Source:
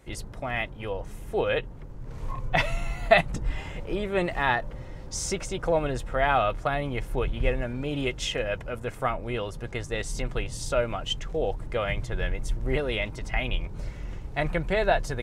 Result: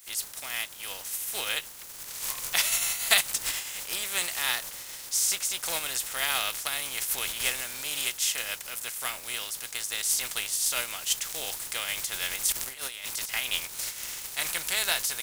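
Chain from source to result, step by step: spectral contrast lowered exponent 0.52; pre-emphasis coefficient 0.97; 12.52–13.29 negative-ratio compressor -42 dBFS, ratio -0.5; gain +7 dB

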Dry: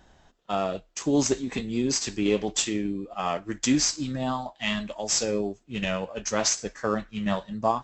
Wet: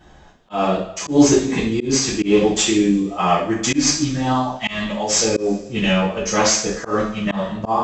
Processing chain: high shelf 4400 Hz -6 dB; two-slope reverb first 0.46 s, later 1.5 s, from -18 dB, DRR -8.5 dB; auto swell 0.157 s; gain +2.5 dB

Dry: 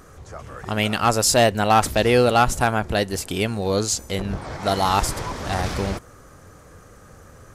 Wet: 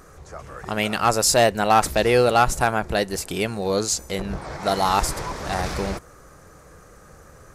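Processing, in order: thirty-one-band EQ 100 Hz -10 dB, 250 Hz -6 dB, 3150 Hz -4 dB

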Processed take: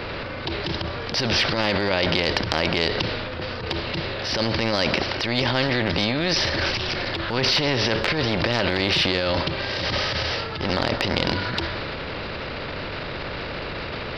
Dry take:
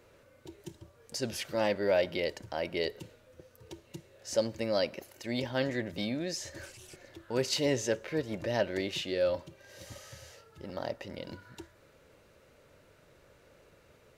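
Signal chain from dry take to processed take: low shelf 230 Hz +8 dB; in parallel at +0.5 dB: negative-ratio compressor -38 dBFS, ratio -1; on the sum: downsampling 11025 Hz; transient shaper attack -10 dB, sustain +4 dB; maximiser +18.5 dB; spectral compressor 2:1; gain -1 dB

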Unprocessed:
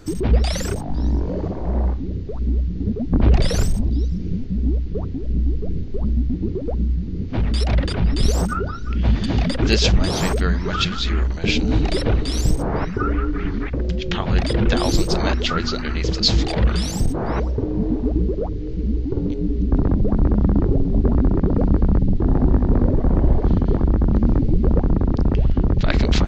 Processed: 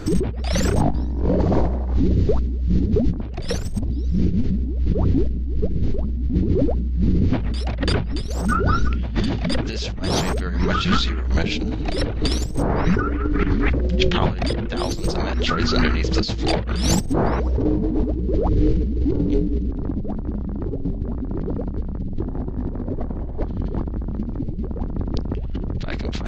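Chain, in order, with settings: negative-ratio compressor -26 dBFS, ratio -1; high shelf 5300 Hz -9 dB, from 1.4 s +4 dB, from 3.39 s -3 dB; gain +4.5 dB

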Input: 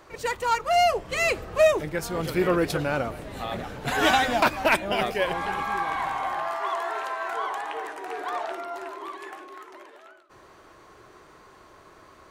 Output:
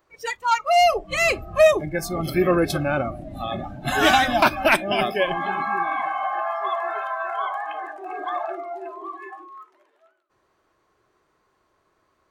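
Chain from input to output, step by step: spectral noise reduction 20 dB; gain +4 dB

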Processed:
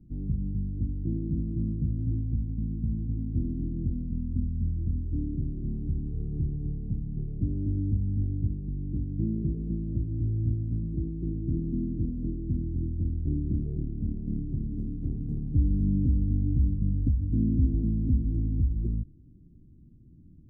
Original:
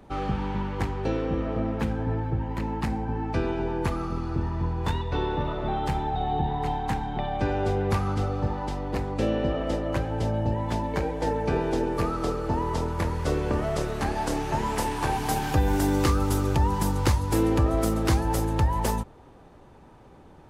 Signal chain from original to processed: inverse Chebyshev low-pass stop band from 900 Hz, stop band 50 dB; formant shift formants -5 st

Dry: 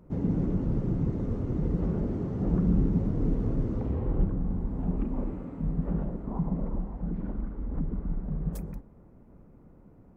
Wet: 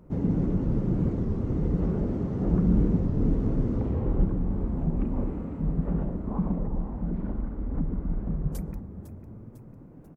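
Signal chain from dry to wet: frequency-shifting echo 0.5 s, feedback 57%, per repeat +31 Hz, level -13.5 dB; record warp 33 1/3 rpm, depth 160 cents; gain +2 dB

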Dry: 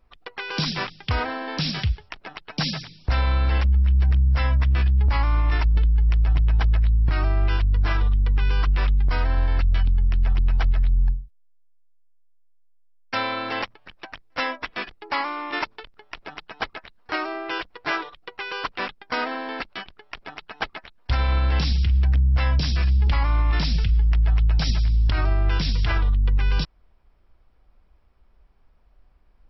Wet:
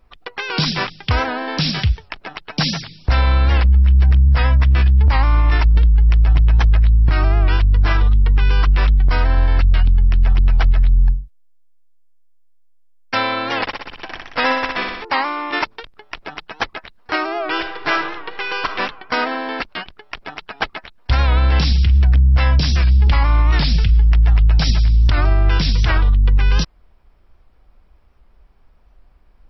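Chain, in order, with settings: 13.61–15.05 flutter echo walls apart 10.5 m, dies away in 1 s; 17.28–18.66 reverb throw, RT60 1.2 s, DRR 5.5 dB; record warp 78 rpm, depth 100 cents; gain +6.5 dB

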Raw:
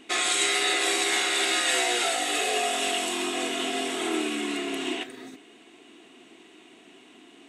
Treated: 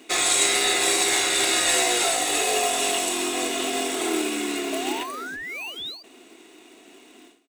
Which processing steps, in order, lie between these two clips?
on a send: feedback echo 61 ms, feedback 38%, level -22 dB; on the sum: painted sound rise, 4.72–6.03, 620–4800 Hz -35 dBFS; HPF 170 Hz 24 dB/oct; low shelf 500 Hz +5.5 dB; in parallel at -9 dB: sample-and-hold 25×; on the sum: tone controls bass -12 dB, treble +7 dB; notch 3100 Hz, Q 13; ending taper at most 110 dB/s

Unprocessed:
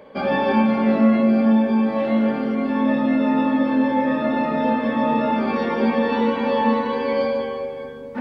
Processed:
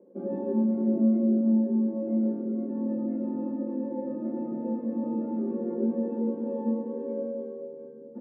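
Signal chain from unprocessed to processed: Butterworth band-pass 310 Hz, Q 1.5; comb 5.7 ms, depth 70%; gain -4.5 dB

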